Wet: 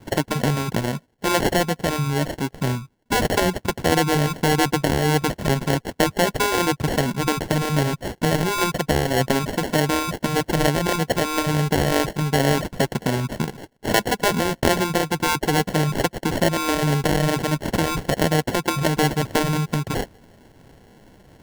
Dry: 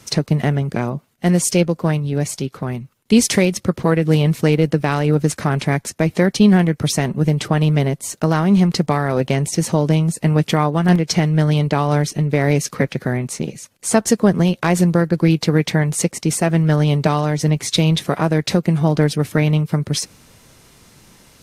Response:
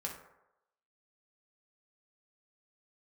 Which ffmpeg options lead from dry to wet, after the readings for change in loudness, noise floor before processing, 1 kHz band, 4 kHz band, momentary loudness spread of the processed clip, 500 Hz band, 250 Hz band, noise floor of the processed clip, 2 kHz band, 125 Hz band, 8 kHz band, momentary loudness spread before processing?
-4.0 dB, -55 dBFS, +1.5 dB, 0.0 dB, 5 LU, -2.5 dB, -6.5 dB, -57 dBFS, +1.0 dB, -7.5 dB, -4.5 dB, 7 LU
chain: -af "aphaser=in_gain=1:out_gain=1:delay=4.7:decay=0.35:speed=1.5:type=sinusoidal,acrusher=samples=36:mix=1:aa=0.000001,afftfilt=real='re*lt(hypot(re,im),1.58)':imag='im*lt(hypot(re,im),1.58)':win_size=1024:overlap=0.75,volume=0.794"

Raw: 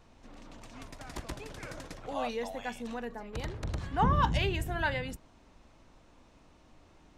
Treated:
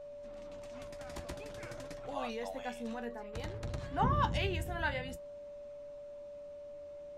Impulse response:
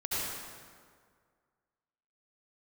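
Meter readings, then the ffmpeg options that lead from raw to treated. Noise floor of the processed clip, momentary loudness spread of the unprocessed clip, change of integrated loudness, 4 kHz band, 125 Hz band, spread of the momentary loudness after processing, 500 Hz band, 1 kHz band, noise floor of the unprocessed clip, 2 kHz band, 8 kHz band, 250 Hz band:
-48 dBFS, 21 LU, -5.5 dB, -4.0 dB, -4.0 dB, 16 LU, -1.0 dB, -4.0 dB, -60 dBFS, -4.0 dB, -4.0 dB, -4.0 dB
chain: -af "flanger=delay=6.8:depth=6.9:regen=50:speed=0.51:shape=triangular,aeval=exprs='val(0)+0.00562*sin(2*PI*580*n/s)':c=same"

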